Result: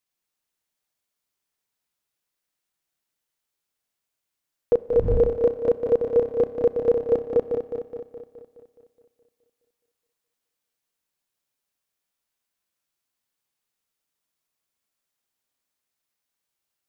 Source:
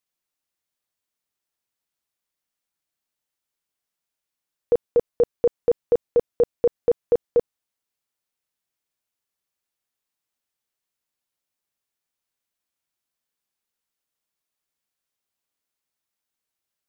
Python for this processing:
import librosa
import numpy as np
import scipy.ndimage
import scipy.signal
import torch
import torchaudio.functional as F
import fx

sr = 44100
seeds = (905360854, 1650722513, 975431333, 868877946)

y = fx.reverse_delay_fb(x, sr, ms=105, feedback_pct=75, wet_db=-6)
y = fx.dmg_wind(y, sr, seeds[0], corner_hz=85.0, level_db=-30.0, at=(4.88, 5.36), fade=0.02)
y = fx.rev_schroeder(y, sr, rt60_s=0.89, comb_ms=30, drr_db=17.5)